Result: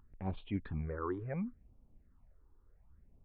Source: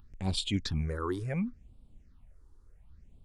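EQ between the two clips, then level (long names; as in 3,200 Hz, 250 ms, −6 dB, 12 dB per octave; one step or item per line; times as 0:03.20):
Gaussian smoothing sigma 4.8 samples
low-shelf EQ 360 Hz −7.5 dB
0.0 dB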